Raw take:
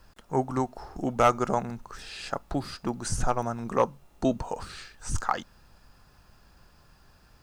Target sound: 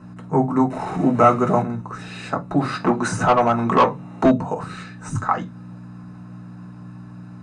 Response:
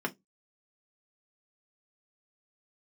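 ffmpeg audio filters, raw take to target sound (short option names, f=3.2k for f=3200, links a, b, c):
-filter_complex "[0:a]asettb=1/sr,asplit=3[a][b][c];[a]atrim=end=0.704[d];[b]atrim=start=0.7:end=1.62,asetpts=PTS-STARTPTS,afade=t=in:d=0.004:c=qsin,afade=t=out:st=0.916:d=0.004:c=qsin,aeval=exprs='val(0)+0.5*0.02*sgn(val(0))':c=same[e];[c]atrim=start=1.616[f];[d][e]acrossfade=d=0.004:c1=hsin:c2=qsin[g];[g][f]acrossfade=d=0.004:c1=qsin:c2=hsin,asplit=2[h][i];[i]acompressor=threshold=-35dB:ratio=6,volume=1dB[j];[h][j]amix=inputs=2:normalize=0,aeval=exprs='val(0)+0.00794*(sin(2*PI*60*n/s)+sin(2*PI*2*60*n/s)/2+sin(2*PI*3*60*n/s)/3+sin(2*PI*4*60*n/s)/4+sin(2*PI*5*60*n/s)/5)':c=same[k];[1:a]atrim=start_sample=2205,asetrate=31752,aresample=44100[l];[k][l]afir=irnorm=-1:irlink=0,asplit=3[m][n][o];[m]afade=t=out:st=2.59:d=0.02[p];[n]asplit=2[q][r];[r]highpass=f=720:p=1,volume=17dB,asoftclip=type=tanh:threshold=-1dB[s];[q][s]amix=inputs=2:normalize=0,lowpass=f=3.5k:p=1,volume=-6dB,afade=t=in:st=2.59:d=0.02,afade=t=out:st=4.3:d=0.02[t];[o]afade=t=in:st=4.3:d=0.02[u];[p][t][u]amix=inputs=3:normalize=0,aresample=22050,aresample=44100,volume=-4.5dB"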